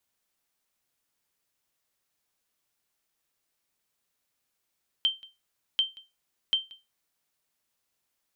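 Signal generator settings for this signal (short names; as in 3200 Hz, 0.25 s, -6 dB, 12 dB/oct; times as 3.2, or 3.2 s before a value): sonar ping 3130 Hz, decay 0.23 s, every 0.74 s, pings 3, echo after 0.18 s, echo -22.5 dB -16.5 dBFS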